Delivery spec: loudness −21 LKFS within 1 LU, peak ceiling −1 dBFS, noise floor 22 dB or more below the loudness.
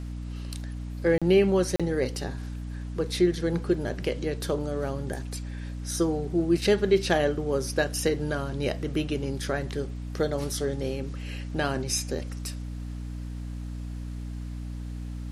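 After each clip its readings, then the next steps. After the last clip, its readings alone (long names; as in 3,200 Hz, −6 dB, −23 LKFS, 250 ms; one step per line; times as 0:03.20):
number of dropouts 2; longest dropout 36 ms; mains hum 60 Hz; hum harmonics up to 300 Hz; level of the hum −32 dBFS; integrated loudness −28.5 LKFS; sample peak −10.0 dBFS; target loudness −21.0 LKFS
→ repair the gap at 0:01.18/0:01.76, 36 ms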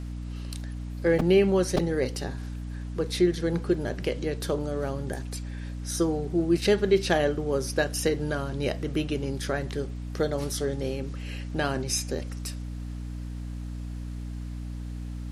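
number of dropouts 0; mains hum 60 Hz; hum harmonics up to 300 Hz; level of the hum −32 dBFS
→ mains-hum notches 60/120/180/240/300 Hz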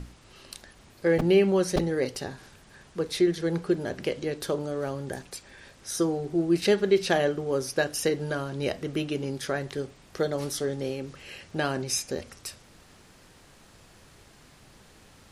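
mains hum none found; integrated loudness −28.0 LKFS; sample peak −10.0 dBFS; target loudness −21.0 LKFS
→ level +7 dB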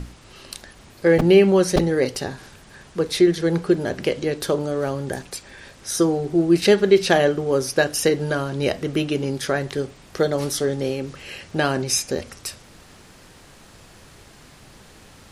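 integrated loudness −21.0 LKFS; sample peak −3.0 dBFS; background noise floor −48 dBFS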